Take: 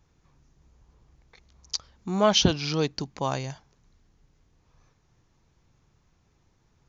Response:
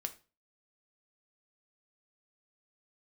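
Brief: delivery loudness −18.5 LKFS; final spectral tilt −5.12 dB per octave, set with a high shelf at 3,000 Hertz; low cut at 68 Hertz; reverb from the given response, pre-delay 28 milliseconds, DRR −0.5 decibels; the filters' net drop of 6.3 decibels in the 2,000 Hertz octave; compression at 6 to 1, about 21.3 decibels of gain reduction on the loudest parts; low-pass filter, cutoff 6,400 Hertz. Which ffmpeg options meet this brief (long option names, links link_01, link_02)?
-filter_complex "[0:a]highpass=68,lowpass=6400,equalizer=frequency=2000:width_type=o:gain=-7.5,highshelf=frequency=3000:gain=-4.5,acompressor=threshold=-41dB:ratio=6,asplit=2[link_01][link_02];[1:a]atrim=start_sample=2205,adelay=28[link_03];[link_02][link_03]afir=irnorm=-1:irlink=0,volume=1.5dB[link_04];[link_01][link_04]amix=inputs=2:normalize=0,volume=23.5dB"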